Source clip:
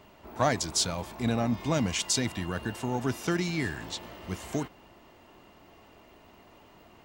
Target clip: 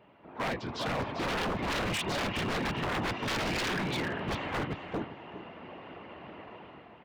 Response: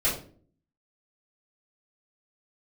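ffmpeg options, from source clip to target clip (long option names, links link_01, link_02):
-filter_complex "[0:a]afftfilt=real='hypot(re,im)*cos(2*PI*random(0))':imag='hypot(re,im)*sin(2*PI*random(1))':win_size=512:overlap=0.75,asplit=2[link_01][link_02];[link_02]alimiter=level_in=5dB:limit=-24dB:level=0:latency=1:release=350,volume=-5dB,volume=1.5dB[link_03];[link_01][link_03]amix=inputs=2:normalize=0,highpass=98,dynaudnorm=framelen=190:gausssize=7:maxgain=13dB,lowpass=frequency=3000:width=0.5412,lowpass=frequency=3000:width=1.3066,asplit=2[link_04][link_05];[link_05]aecho=0:1:396|792|1188:0.398|0.0677|0.0115[link_06];[link_04][link_06]amix=inputs=2:normalize=0,aeval=exprs='0.0841*(abs(mod(val(0)/0.0841+3,4)-2)-1)':channel_layout=same,volume=-5dB"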